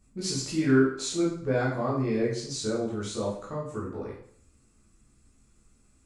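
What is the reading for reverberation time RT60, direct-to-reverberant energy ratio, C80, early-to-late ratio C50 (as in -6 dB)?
0.60 s, -7.0 dB, 7.5 dB, 4.0 dB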